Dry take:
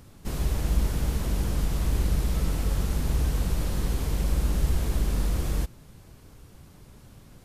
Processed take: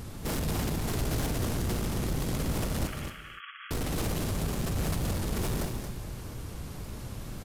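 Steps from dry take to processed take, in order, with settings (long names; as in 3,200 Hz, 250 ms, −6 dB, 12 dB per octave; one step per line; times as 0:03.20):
in parallel at +1.5 dB: compressor whose output falls as the input rises −28 dBFS, ratio −0.5
on the sum: wave folding −22 dBFS
tape wow and flutter 62 cents
soft clipping −27.5 dBFS, distortion −15 dB
0:02.87–0:03.71: linear-phase brick-wall band-pass 1,100–3,400 Hz
single-tap delay 226 ms −7.5 dB
reverb whose tail is shaped and stops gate 320 ms flat, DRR 9 dB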